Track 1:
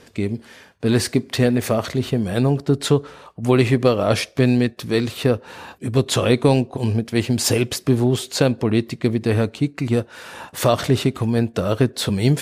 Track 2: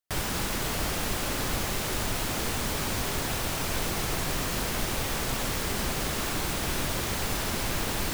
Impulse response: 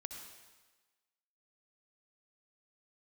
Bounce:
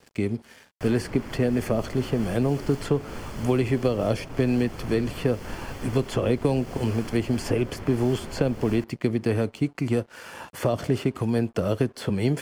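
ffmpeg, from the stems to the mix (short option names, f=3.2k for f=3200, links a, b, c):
-filter_complex "[0:a]volume=-1.5dB[a];[1:a]lowpass=f=4k:p=1,tiltshelf=f=650:g=3,flanger=delay=6.4:depth=8.3:regen=-65:speed=0.58:shape=triangular,adelay=700,volume=-1dB[b];[a][b]amix=inputs=2:normalize=0,acrossover=split=240|670|2800[c][d][e][f];[c]acompressor=threshold=-26dB:ratio=4[g];[d]acompressor=threshold=-22dB:ratio=4[h];[e]acompressor=threshold=-36dB:ratio=4[i];[f]acompressor=threshold=-42dB:ratio=4[j];[g][h][i][j]amix=inputs=4:normalize=0,asuperstop=centerf=3800:order=4:qfactor=6.3,aeval=exprs='sgn(val(0))*max(abs(val(0))-0.00316,0)':c=same"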